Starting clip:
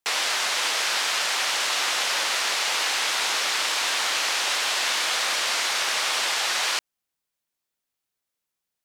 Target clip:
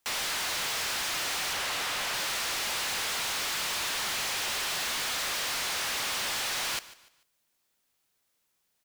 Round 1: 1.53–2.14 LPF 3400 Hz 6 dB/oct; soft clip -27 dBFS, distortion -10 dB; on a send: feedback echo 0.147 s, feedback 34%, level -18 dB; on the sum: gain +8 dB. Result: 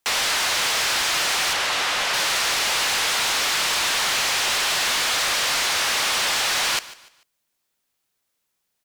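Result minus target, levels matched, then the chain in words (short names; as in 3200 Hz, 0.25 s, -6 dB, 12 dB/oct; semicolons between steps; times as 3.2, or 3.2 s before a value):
soft clip: distortion -5 dB
1.53–2.14 LPF 3400 Hz 6 dB/oct; soft clip -39 dBFS, distortion -4 dB; on a send: feedback echo 0.147 s, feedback 34%, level -18 dB; on the sum: gain +8 dB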